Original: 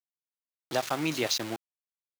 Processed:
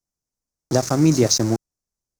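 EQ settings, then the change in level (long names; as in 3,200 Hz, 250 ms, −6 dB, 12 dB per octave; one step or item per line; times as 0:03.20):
dynamic equaliser 850 Hz, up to −5 dB, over −40 dBFS, Q 2.1
spectral tilt −4.5 dB per octave
high shelf with overshoot 4,300 Hz +11.5 dB, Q 3
+7.5 dB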